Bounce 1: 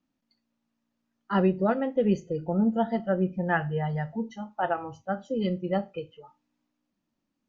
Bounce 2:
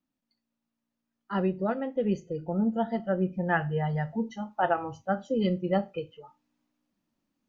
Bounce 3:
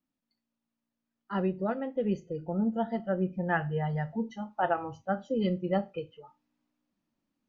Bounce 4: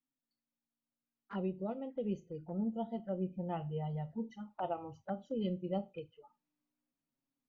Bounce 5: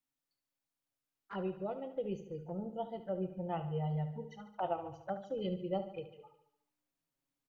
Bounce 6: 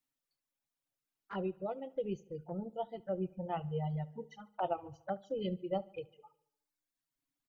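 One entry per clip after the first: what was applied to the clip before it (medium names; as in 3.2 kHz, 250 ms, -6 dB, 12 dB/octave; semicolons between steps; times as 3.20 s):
gain riding 2 s; trim -1.5 dB
distance through air 53 m; trim -2 dB
touch-sensitive flanger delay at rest 7.5 ms, full sweep at -29.5 dBFS; trim -7 dB
peaking EQ 230 Hz -14.5 dB 0.37 oct; on a send: feedback delay 72 ms, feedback 58%, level -12 dB; on the sum: trim +2 dB
reverb removal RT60 1.3 s; trim +1.5 dB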